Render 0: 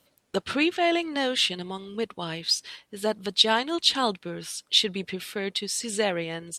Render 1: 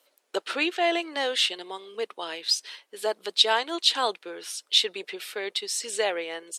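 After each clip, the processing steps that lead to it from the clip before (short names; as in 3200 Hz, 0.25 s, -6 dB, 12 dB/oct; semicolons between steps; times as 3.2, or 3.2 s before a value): HPF 370 Hz 24 dB/oct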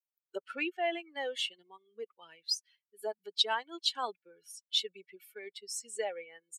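per-bin expansion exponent 2; gain -6 dB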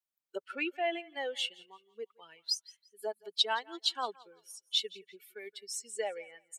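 thinning echo 0.171 s, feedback 26%, high-pass 440 Hz, level -21.5 dB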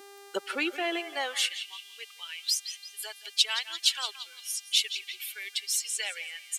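buzz 400 Hz, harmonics 34, -71 dBFS -4 dB/oct; high-pass sweep 320 Hz -> 2800 Hz, 0.96–1.63; spectral compressor 2:1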